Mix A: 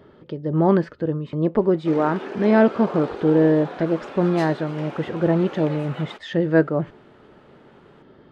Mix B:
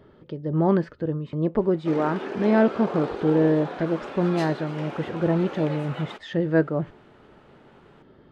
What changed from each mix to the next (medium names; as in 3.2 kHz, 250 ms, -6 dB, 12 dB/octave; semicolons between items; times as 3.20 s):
speech -4.0 dB; master: add bass shelf 90 Hz +7.5 dB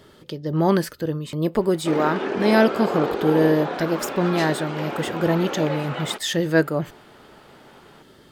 speech: remove tape spacing loss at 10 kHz 43 dB; background +6.5 dB